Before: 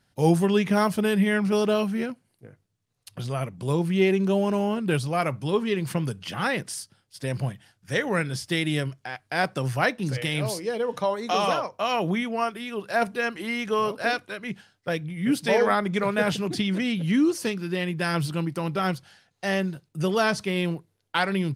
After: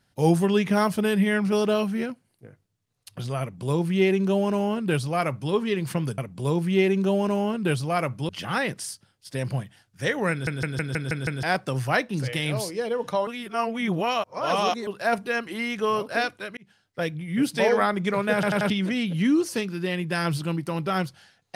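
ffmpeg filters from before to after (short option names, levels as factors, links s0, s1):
-filter_complex "[0:a]asplit=17[s0][s1][s2][s3][s4][s5][s6][s7][s8][s9][s10][s11][s12][s13][s14][s15][s16];[s0]atrim=end=6.182[s17];[s1]atrim=start=3.408:end=5.522[s18];[s2]atrim=start=6.178:end=8.362[s19];[s3]atrim=start=8.198:end=8.362[s20];[s4]atrim=start=8.198:end=8.362[s21];[s5]atrim=start=8.198:end=8.362[s22];[s6]atrim=start=8.198:end=8.362[s23];[s7]atrim=start=8.198:end=8.362[s24];[s8]atrim=start=8.198:end=8.362[s25];[s9]atrim=start=9.318:end=11.162[s26];[s10]atrim=start=11.158:end=12.762,asetpts=PTS-STARTPTS,areverse[s27];[s11]atrim=start=12.758:end=14.46,asetpts=PTS-STARTPTS,afade=t=out:st=1.698:d=0.004:c=hsin[s28];[s12]atrim=start=14.46:end=16.322,asetpts=PTS-STARTPTS,afade=t=in:d=0.46[s29];[s13]atrim=start=16.228:end=16.322[s30];[s14]atrim=start=16.228:end=16.322[s31];[s15]atrim=start=16.228:end=16.322[s32];[s16]atrim=start=16.588[s33];[s17][s18]acrossfade=d=0.004:c1=hsin:c2=hsin[s34];[s34][s19]acrossfade=d=0.004:c1=hsin:c2=hsin[s35];[s35][s20]acrossfade=d=0.004:c1=hsin:c2=hsin[s36];[s36][s21]acrossfade=d=0.004:c1=hsin:c2=hsin[s37];[s37][s22]acrossfade=d=0.004:c1=hsin:c2=hsin[s38];[s38][s23]acrossfade=d=0.004:c1=hsin:c2=hsin[s39];[s39][s24]acrossfade=d=0.004:c1=hsin:c2=hsin[s40];[s40][s25]acrossfade=d=0.004:c1=hsin:c2=hsin[s41];[s41][s26]acrossfade=d=0.004:c1=hsin:c2=hsin[s42];[s42][s27]acrossfade=d=0.004:c1=hsin:c2=hsin[s43];[s28][s29]concat=n=2:v=0:a=1[s44];[s43][s44]acrossfade=d=0.004:c1=hsin:c2=hsin[s45];[s45][s30]acrossfade=d=0.004:c1=hsin:c2=hsin[s46];[s46][s31]acrossfade=d=0.004:c1=hsin:c2=hsin[s47];[s47][s32]acrossfade=d=0.004:c1=hsin:c2=hsin[s48];[s48][s33]acrossfade=d=0.004:c1=hsin:c2=hsin"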